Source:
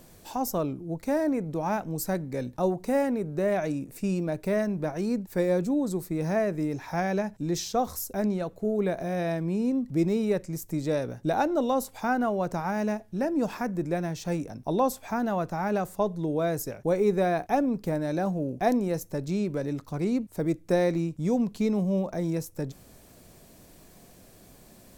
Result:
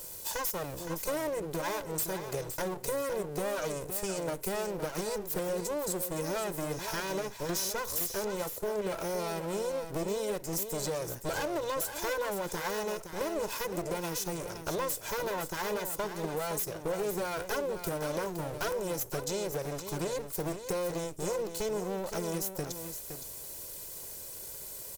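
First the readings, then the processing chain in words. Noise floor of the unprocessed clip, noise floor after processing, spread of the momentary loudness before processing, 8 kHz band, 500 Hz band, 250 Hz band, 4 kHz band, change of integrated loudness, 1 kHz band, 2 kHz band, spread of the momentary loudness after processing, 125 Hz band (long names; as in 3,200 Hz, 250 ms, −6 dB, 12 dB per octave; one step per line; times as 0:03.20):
−54 dBFS, −44 dBFS, 6 LU, +6.0 dB, −5.0 dB, −12.5 dB, +4.0 dB, −6.0 dB, −6.0 dB, −1.5 dB, 4 LU, −9.0 dB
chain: lower of the sound and its delayed copy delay 2 ms
high-shelf EQ 6,400 Hz +9 dB
in parallel at −1.5 dB: brickwall limiter −21 dBFS, peak gain reduction 7 dB
on the sum: bass and treble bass −5 dB, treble +6 dB
gain into a clipping stage and back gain 19 dB
downward compressor, threshold −29 dBFS, peak gain reduction 8 dB
on a send: single-tap delay 515 ms −9 dB
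on the sum: level −2 dB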